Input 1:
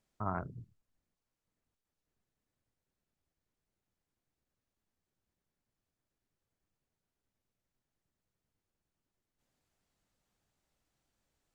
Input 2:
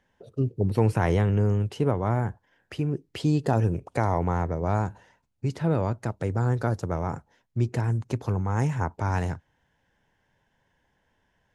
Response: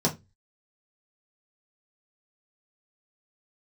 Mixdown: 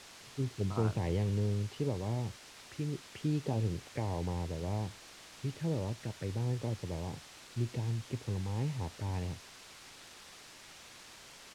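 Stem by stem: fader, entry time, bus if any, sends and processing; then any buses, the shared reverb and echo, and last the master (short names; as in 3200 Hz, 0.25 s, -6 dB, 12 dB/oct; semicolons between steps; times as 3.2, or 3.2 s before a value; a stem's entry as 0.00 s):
-5.5 dB, 0.50 s, no send, dry
-9.0 dB, 0.00 s, no send, envelope phaser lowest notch 510 Hz, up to 1400 Hz, full sweep at -24.5 dBFS; notch 690 Hz, Q 12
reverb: off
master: requantised 8-bit, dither triangular; LPF 6200 Hz 12 dB/oct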